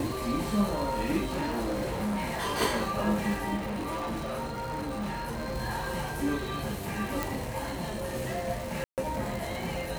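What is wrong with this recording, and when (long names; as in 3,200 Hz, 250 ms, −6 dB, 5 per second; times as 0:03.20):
surface crackle 300 per second −34 dBFS
0:01.29–0:02.62: clipping −27 dBFS
0:03.56–0:05.55: clipping −30 dBFS
0:07.23: click
0:08.84–0:08.98: drop-out 138 ms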